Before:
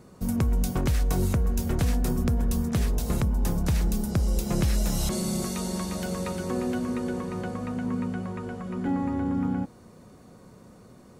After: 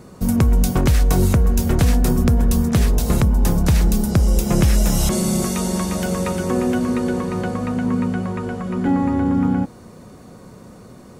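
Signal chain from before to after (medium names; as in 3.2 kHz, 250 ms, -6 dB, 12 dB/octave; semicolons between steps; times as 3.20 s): 4.17–6.81 s: peaking EQ 4.2 kHz -6 dB 0.26 oct; trim +9 dB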